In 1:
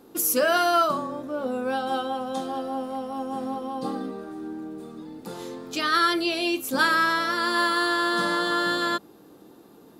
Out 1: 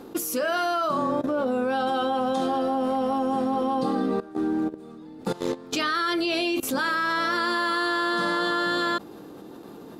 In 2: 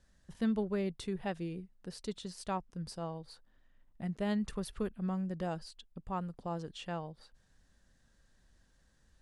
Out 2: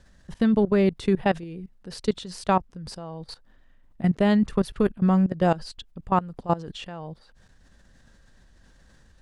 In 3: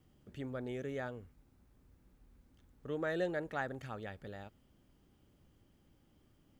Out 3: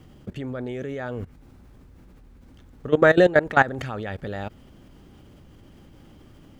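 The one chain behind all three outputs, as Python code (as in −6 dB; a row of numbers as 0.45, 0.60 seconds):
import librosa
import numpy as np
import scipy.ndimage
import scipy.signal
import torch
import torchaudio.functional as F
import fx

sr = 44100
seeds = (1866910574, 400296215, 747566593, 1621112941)

y = fx.level_steps(x, sr, step_db=18)
y = fx.high_shelf(y, sr, hz=7400.0, db=-9.0)
y = y * 10.0 ** (-26 / 20.0) / np.sqrt(np.mean(np.square(y)))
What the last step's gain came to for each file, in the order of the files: +11.5, +17.5, +23.0 decibels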